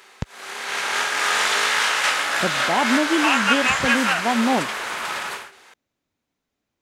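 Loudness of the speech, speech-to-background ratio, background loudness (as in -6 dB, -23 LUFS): -24.5 LUFS, -4.0 dB, -20.5 LUFS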